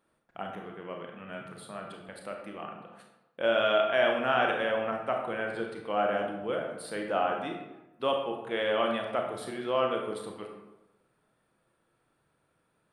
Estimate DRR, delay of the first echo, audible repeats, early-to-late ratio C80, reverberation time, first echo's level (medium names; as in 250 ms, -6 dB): 1.5 dB, no echo, no echo, 6.5 dB, 1.0 s, no echo